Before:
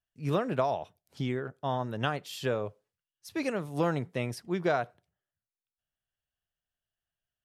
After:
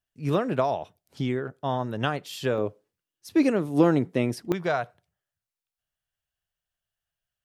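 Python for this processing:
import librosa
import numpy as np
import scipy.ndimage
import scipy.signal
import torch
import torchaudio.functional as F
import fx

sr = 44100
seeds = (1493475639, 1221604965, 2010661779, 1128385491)

y = fx.peak_eq(x, sr, hz=300.0, db=fx.steps((0.0, 2.5), (2.58, 10.5), (4.52, -6.0)), octaves=1.1)
y = y * 10.0 ** (3.0 / 20.0)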